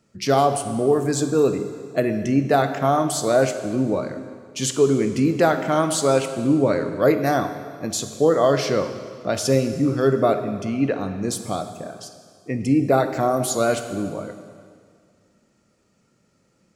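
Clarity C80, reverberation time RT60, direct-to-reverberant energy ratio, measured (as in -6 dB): 10.0 dB, 2.0 s, 8.0 dB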